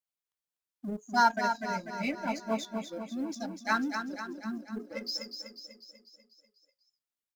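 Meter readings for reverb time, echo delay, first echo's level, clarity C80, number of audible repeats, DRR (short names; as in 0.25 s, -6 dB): none, 0.246 s, -7.0 dB, none, 6, none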